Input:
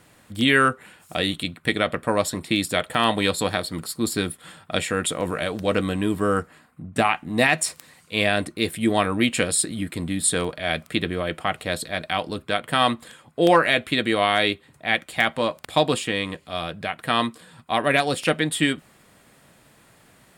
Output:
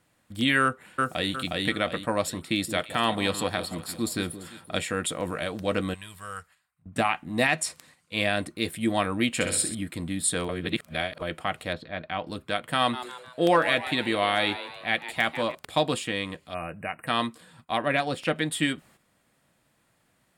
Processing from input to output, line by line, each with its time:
0.62–1.33 echo throw 0.36 s, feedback 35%, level -1.5 dB
2.44–4.79 echo with dull and thin repeats by turns 0.171 s, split 890 Hz, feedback 58%, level -11 dB
5.94–6.86 passive tone stack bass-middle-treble 10-0-10
7.47–8.16 LPF 12000 Hz
9.34–9.75 flutter echo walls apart 11 m, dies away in 0.56 s
10.49–11.22 reverse
11.73–12.27 air absorption 300 m
12.78–15.55 frequency-shifting echo 0.151 s, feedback 48%, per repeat +130 Hz, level -12.5 dB
16.54–17.07 brick-wall FIR band-stop 2900–7800 Hz
17.77–18.36 bell 11000 Hz -9.5 dB 1.9 oct
whole clip: gate -49 dBFS, range -9 dB; notch 420 Hz, Q 12; gain -4.5 dB

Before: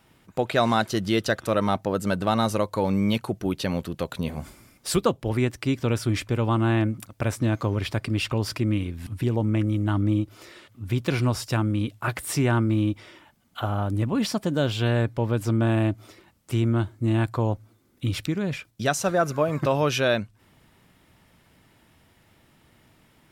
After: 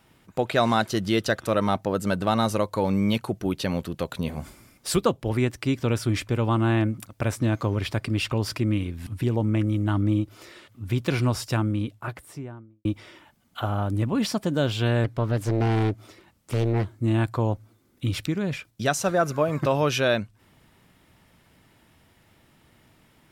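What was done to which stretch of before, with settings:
11.44–12.85 studio fade out
15.04–16.88 Doppler distortion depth 0.99 ms

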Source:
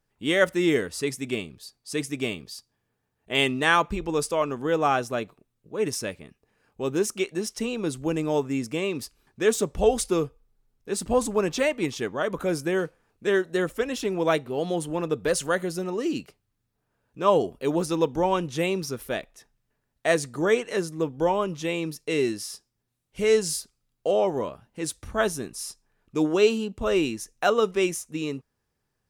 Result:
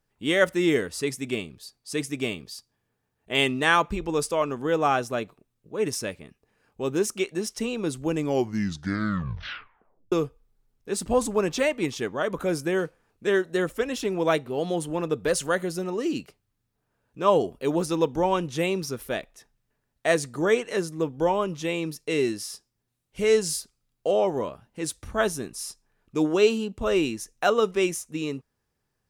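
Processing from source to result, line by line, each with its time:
8.15 tape stop 1.97 s

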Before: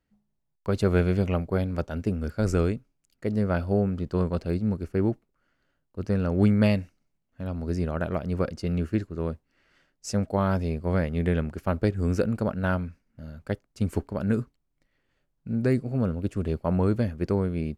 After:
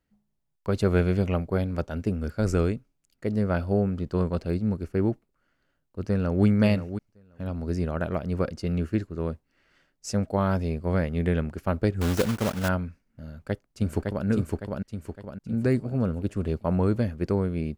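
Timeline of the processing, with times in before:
6.02–6.45 echo throw 0.53 s, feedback 10%, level -11 dB
12.01–12.69 block floating point 3-bit
13.24–14.26 echo throw 0.56 s, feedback 45%, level -2 dB

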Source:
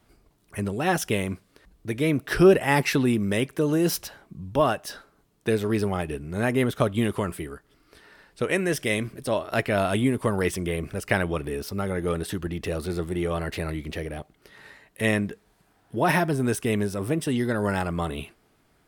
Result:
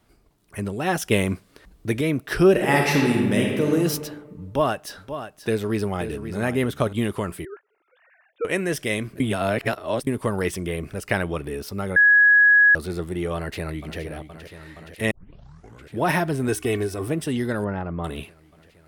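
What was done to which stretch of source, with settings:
1.11–2.01 gain +5.5 dB
2.51–3.73 reverb throw, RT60 1.5 s, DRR -0.5 dB
4.45–6.93 echo 0.531 s -10.5 dB
7.45–8.45 sine-wave speech
9.2–10.07 reverse
11.96–12.75 bleep 1670 Hz -11 dBFS
13.35–14 echo throw 0.47 s, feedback 85%, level -11.5 dB
15.11 tape start 0.87 s
16.48–17.08 comb 2.7 ms
17.64–18.04 tape spacing loss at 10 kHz 44 dB

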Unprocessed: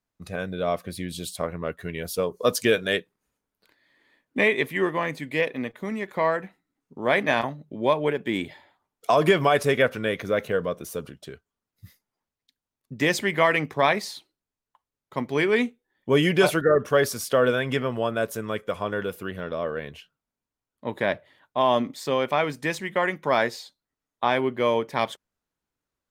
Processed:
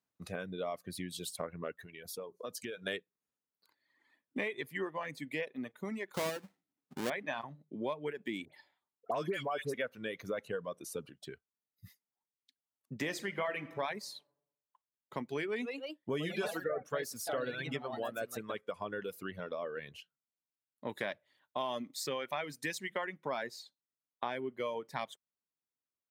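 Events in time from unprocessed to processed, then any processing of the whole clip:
1.77–2.87 compressor 3:1, threshold -37 dBFS
6.14–7.1 half-waves squared off
8.45–9.74 dispersion highs, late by 79 ms, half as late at 1700 Hz
10.39–11.06 LPF 12000 Hz 24 dB/oct
13.01–13.8 reverb throw, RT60 0.82 s, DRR 5.5 dB
15.45–18.79 echoes that change speed 0.163 s, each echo +2 st, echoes 2, each echo -6 dB
20.89–23.05 high shelf 2300 Hz +8 dB
whole clip: reverb removal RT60 1.6 s; HPF 110 Hz; compressor 3:1, threshold -32 dBFS; gain -4.5 dB

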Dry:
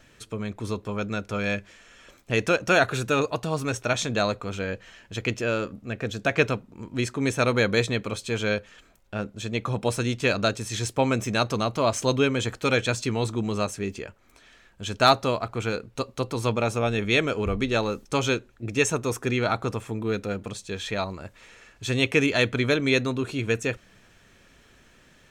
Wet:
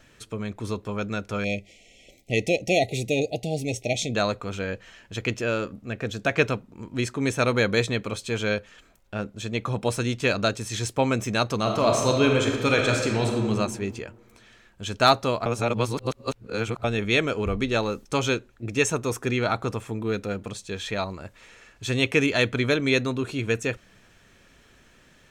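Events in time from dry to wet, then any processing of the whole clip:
1.44–4.15 brick-wall FIR band-stop 820–1900 Hz
11.56–13.48 reverb throw, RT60 1.6 s, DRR 1 dB
15.46–16.84 reverse

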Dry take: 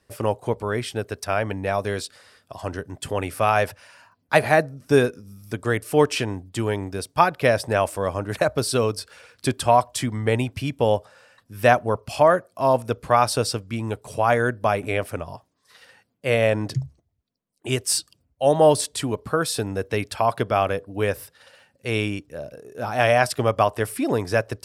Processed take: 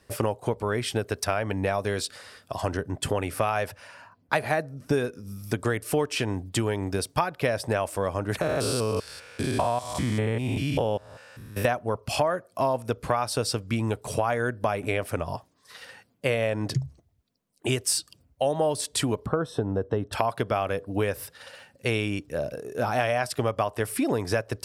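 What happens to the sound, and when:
2.77–5.02 mismatched tape noise reduction decoder only
8.41–11.65 stepped spectrum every 0.2 s
19.26–20.13 running mean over 19 samples
whole clip: compressor 6:1, threshold -28 dBFS; gain +5.5 dB

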